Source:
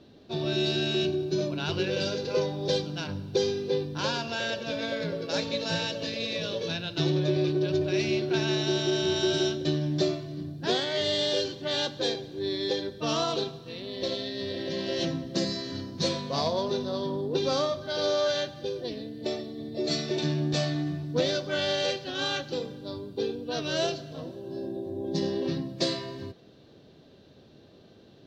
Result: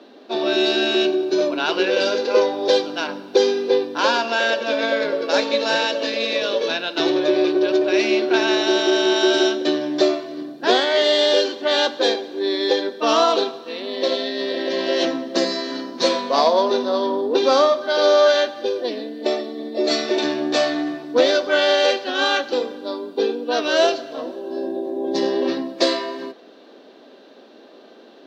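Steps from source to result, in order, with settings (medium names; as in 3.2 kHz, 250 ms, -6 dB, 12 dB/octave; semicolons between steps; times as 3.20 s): Chebyshev high-pass 240 Hz, order 4; peaking EQ 1.1 kHz +9 dB 3 oct; trim +5.5 dB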